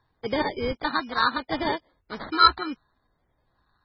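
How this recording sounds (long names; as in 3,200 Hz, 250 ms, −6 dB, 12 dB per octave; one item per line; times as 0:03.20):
phaser sweep stages 4, 0.69 Hz, lowest notch 550–1,400 Hz
aliases and images of a low sample rate 2,700 Hz, jitter 0%
MP3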